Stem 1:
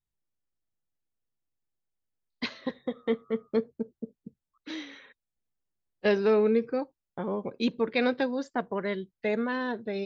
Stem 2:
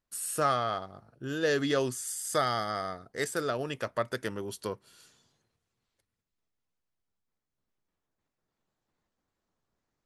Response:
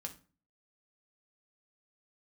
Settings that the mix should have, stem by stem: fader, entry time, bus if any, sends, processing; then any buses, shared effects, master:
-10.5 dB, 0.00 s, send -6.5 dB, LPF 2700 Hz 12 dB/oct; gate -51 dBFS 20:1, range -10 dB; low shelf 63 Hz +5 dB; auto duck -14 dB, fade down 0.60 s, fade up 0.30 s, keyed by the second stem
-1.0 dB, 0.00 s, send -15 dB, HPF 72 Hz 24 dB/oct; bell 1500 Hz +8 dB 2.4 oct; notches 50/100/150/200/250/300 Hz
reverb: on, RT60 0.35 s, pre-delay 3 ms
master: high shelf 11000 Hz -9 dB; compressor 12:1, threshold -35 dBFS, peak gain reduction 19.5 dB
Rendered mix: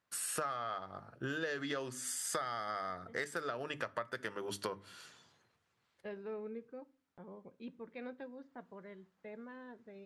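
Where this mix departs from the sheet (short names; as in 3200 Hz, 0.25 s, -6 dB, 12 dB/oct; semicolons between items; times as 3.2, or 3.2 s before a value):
stem 1 -10.5 dB -> -22.5 dB; stem 2: send -15 dB -> -8 dB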